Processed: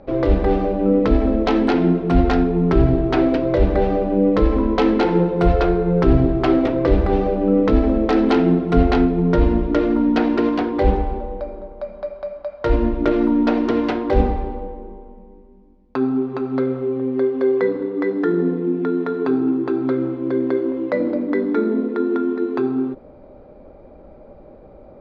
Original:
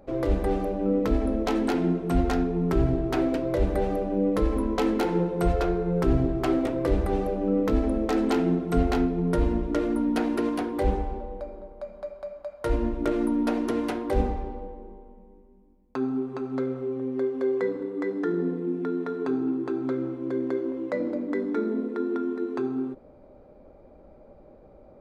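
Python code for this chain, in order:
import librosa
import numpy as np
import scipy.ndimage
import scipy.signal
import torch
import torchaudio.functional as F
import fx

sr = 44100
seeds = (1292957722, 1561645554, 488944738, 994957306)

y = scipy.signal.sosfilt(scipy.signal.butter(4, 4800.0, 'lowpass', fs=sr, output='sos'), x)
y = y * 10.0 ** (8.0 / 20.0)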